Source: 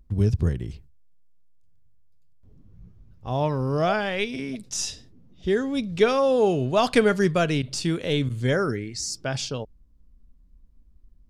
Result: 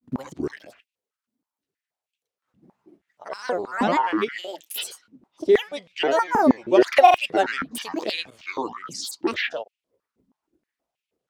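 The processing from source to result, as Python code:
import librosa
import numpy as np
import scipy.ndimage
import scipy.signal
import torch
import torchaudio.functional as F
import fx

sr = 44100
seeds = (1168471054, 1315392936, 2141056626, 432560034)

y = fx.granulator(x, sr, seeds[0], grain_ms=100.0, per_s=20.0, spray_ms=38.0, spread_st=12)
y = fx.filter_held_highpass(y, sr, hz=6.3, low_hz=240.0, high_hz=2600.0)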